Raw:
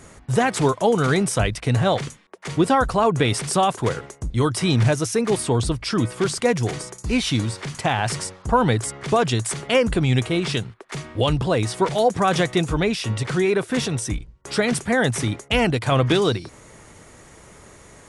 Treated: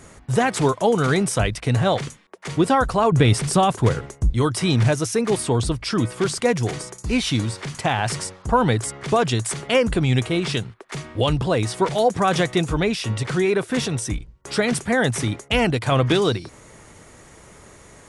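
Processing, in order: 3.12–4.33 low shelf 180 Hz +10.5 dB

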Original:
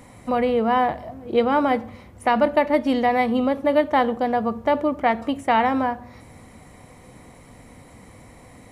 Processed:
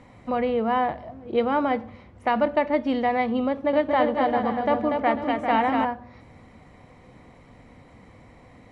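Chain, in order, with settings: LPF 4100 Hz 12 dB/oct; 3.49–5.85 bouncing-ball echo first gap 0.24 s, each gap 0.65×, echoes 5; gain -3.5 dB

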